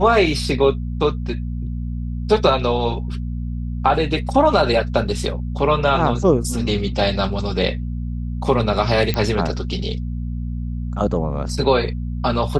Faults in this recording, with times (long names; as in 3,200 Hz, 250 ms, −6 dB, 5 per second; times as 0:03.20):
mains hum 60 Hz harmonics 4 −25 dBFS
0:09.14: click −7 dBFS